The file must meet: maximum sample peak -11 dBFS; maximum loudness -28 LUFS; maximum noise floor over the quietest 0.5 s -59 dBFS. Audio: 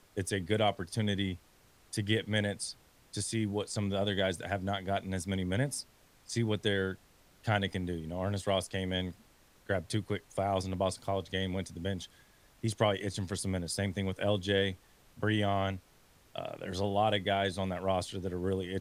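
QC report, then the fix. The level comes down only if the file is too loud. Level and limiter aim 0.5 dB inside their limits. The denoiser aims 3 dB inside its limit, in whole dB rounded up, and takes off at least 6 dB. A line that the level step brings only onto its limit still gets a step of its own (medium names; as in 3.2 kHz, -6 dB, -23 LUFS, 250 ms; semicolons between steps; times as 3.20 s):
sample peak -14.0 dBFS: pass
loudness -33.5 LUFS: pass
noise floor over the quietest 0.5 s -63 dBFS: pass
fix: none needed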